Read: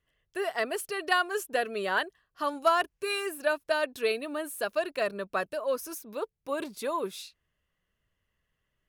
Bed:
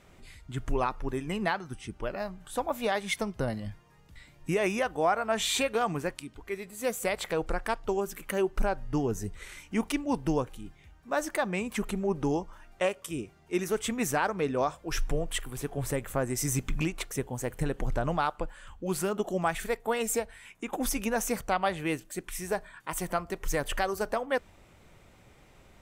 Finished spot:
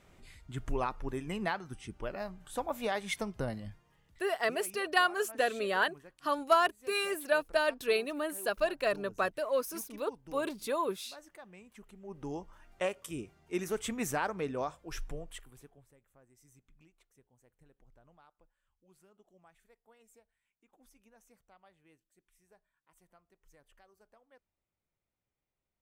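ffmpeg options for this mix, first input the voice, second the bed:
-filter_complex "[0:a]adelay=3850,volume=-1dB[a];[1:a]volume=13dB,afade=t=out:st=3.44:d=1:silence=0.125893,afade=t=in:st=11.98:d=0.79:silence=0.133352,afade=t=out:st=14.23:d=1.62:silence=0.0334965[b];[a][b]amix=inputs=2:normalize=0"

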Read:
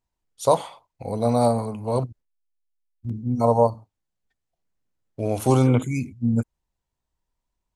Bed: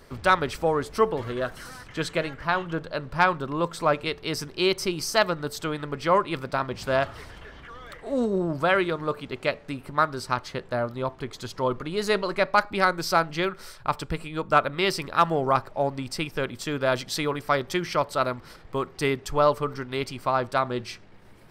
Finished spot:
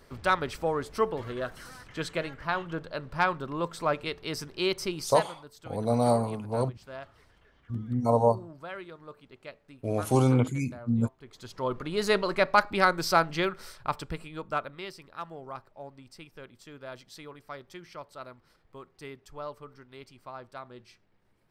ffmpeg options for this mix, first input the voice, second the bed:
-filter_complex "[0:a]adelay=4650,volume=-4.5dB[a];[1:a]volume=12.5dB,afade=t=out:st=4.98:d=0.29:silence=0.211349,afade=t=in:st=11.2:d=0.81:silence=0.133352,afade=t=out:st=13.28:d=1.65:silence=0.133352[b];[a][b]amix=inputs=2:normalize=0"

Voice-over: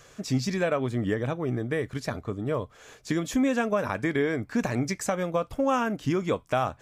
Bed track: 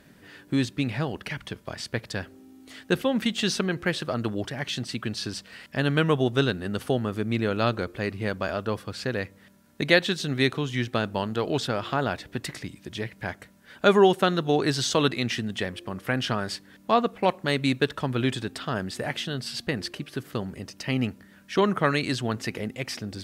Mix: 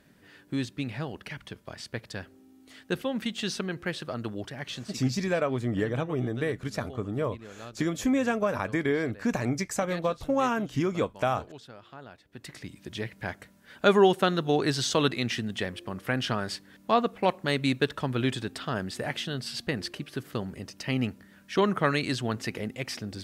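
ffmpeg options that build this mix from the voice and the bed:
-filter_complex "[0:a]adelay=4700,volume=-1dB[a];[1:a]volume=12dB,afade=t=out:st=4.68:d=0.48:silence=0.199526,afade=t=in:st=12.28:d=0.55:silence=0.125893[b];[a][b]amix=inputs=2:normalize=0"

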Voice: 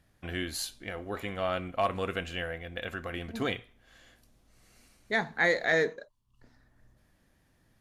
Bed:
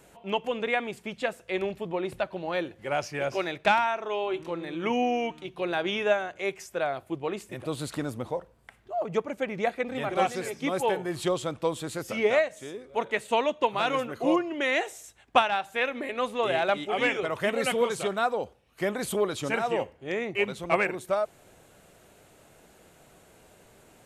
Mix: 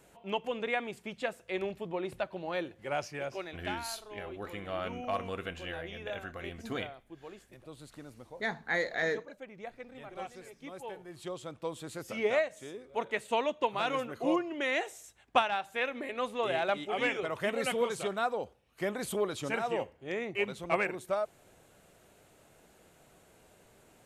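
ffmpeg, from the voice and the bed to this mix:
-filter_complex "[0:a]adelay=3300,volume=-5.5dB[a];[1:a]volume=6.5dB,afade=t=out:st=2.99:d=0.66:silence=0.266073,afade=t=in:st=11.06:d=1.35:silence=0.266073[b];[a][b]amix=inputs=2:normalize=0"

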